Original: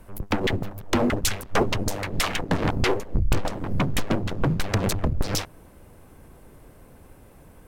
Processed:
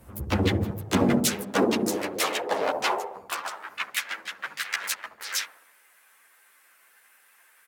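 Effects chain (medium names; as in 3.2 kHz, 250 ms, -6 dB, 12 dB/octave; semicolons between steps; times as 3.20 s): high-pass sweep 62 Hz -> 1.7 kHz, 0.02–3.86 s; harmony voices -5 st -15 dB, +3 st -9 dB; treble shelf 6 kHz +5.5 dB; feedback echo behind a low-pass 70 ms, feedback 51%, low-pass 720 Hz, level -3.5 dB; three-phase chorus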